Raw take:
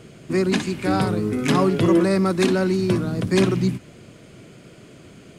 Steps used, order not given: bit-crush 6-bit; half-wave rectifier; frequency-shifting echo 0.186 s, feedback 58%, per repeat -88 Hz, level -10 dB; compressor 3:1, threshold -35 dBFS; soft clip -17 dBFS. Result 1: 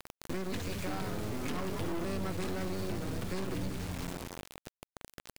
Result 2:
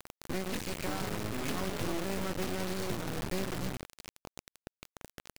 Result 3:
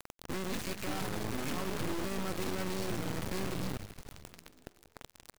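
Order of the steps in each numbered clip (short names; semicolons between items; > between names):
half-wave rectifier > frequency-shifting echo > bit-crush > soft clip > compressor; half-wave rectifier > compressor > frequency-shifting echo > soft clip > bit-crush; soft clip > compressor > bit-crush > frequency-shifting echo > half-wave rectifier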